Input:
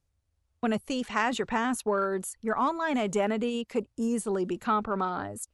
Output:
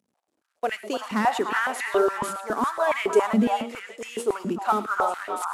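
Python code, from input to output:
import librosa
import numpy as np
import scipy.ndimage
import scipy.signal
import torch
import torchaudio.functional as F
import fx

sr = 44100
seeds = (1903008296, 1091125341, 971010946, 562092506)

p1 = fx.cvsd(x, sr, bps=64000)
p2 = p1 + fx.echo_stepped(p1, sr, ms=298, hz=1000.0, octaves=1.4, feedback_pct=70, wet_db=-1.5, dry=0)
p3 = fx.rev_gated(p2, sr, seeds[0], gate_ms=140, shape='rising', drr_db=11.5)
y = fx.filter_held_highpass(p3, sr, hz=7.2, low_hz=210.0, high_hz=2000.0)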